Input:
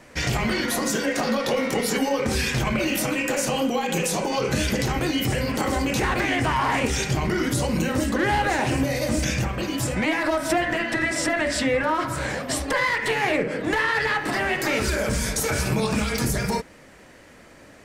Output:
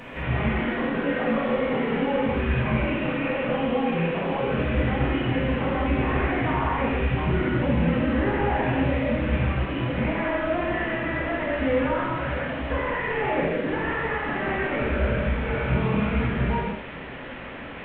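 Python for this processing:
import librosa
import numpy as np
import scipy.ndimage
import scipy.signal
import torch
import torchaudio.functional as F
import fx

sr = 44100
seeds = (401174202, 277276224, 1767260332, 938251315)

y = fx.delta_mod(x, sr, bps=16000, step_db=-30.5)
y = fx.rev_gated(y, sr, seeds[0], gate_ms=240, shape='flat', drr_db=-4.0)
y = y * librosa.db_to_amplitude(-6.0)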